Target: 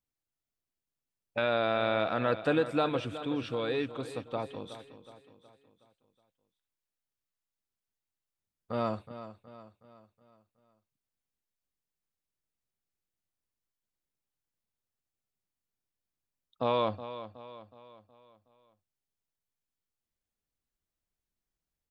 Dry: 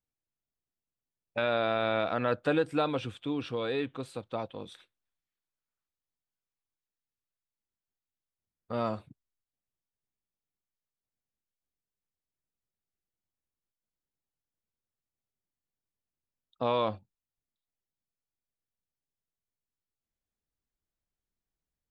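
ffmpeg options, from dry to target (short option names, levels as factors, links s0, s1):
-af "aecho=1:1:369|738|1107|1476|1845:0.224|0.105|0.0495|0.0232|0.0109"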